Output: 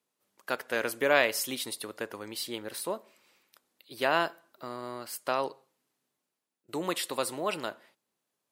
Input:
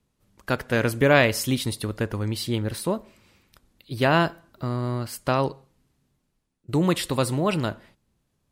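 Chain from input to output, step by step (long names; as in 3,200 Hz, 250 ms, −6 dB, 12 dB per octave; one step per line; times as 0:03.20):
high-pass filter 420 Hz 12 dB per octave
high-shelf EQ 12,000 Hz +7.5 dB
level −5 dB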